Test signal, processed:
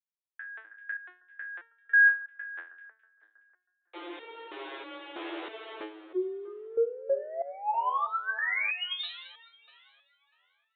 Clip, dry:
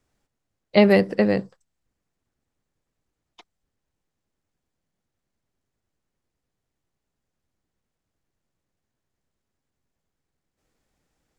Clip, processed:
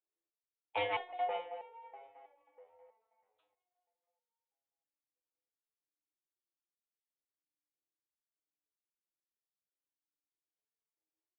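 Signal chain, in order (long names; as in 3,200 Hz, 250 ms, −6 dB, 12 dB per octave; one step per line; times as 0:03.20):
noise gate with hold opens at −26 dBFS
in parallel at −1 dB: downward compressor, threshold −24 dBFS
on the sum: frequency shifter +300 Hz
soft clipping −8 dBFS
on a send: echo with a time of its own for lows and highs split 2,000 Hz, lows 320 ms, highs 210 ms, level −15 dB
on the sum: downsampling to 8,000 Hz
step-sequenced resonator 3.1 Hz 84–460 Hz
level −3.5 dB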